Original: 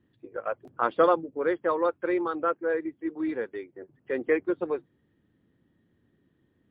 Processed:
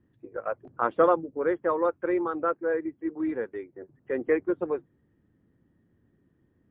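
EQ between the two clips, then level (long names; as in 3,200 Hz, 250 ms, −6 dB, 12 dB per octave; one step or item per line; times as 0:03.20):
low-pass filter 2,000 Hz 12 dB per octave
low-shelf EQ 110 Hz +6 dB
0.0 dB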